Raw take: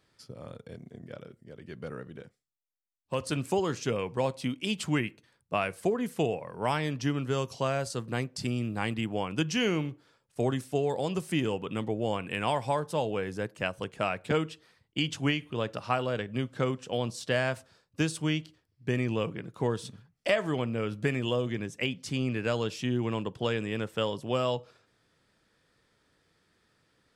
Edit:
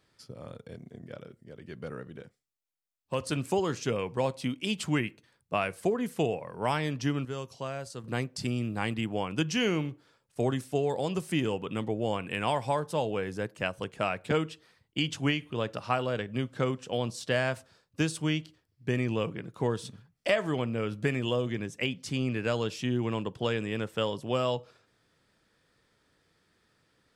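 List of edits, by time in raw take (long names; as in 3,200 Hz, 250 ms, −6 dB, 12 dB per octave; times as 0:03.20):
0:07.25–0:08.04: clip gain −7 dB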